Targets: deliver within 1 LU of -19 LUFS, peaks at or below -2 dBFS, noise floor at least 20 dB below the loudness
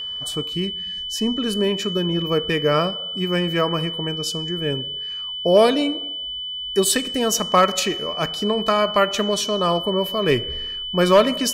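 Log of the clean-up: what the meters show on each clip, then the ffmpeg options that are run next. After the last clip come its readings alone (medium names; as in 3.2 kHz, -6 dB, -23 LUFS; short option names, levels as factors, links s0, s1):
steady tone 3 kHz; tone level -27 dBFS; loudness -21.0 LUFS; peak level -5.0 dBFS; loudness target -19.0 LUFS
-> -af "bandreject=f=3000:w=30"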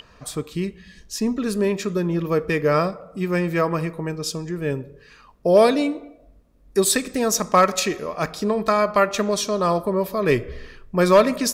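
steady tone not found; loudness -21.5 LUFS; peak level -5.5 dBFS; loudness target -19.0 LUFS
-> -af "volume=1.33"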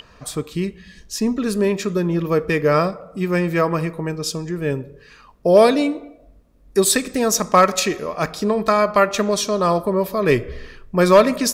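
loudness -19.0 LUFS; peak level -3.0 dBFS; noise floor -49 dBFS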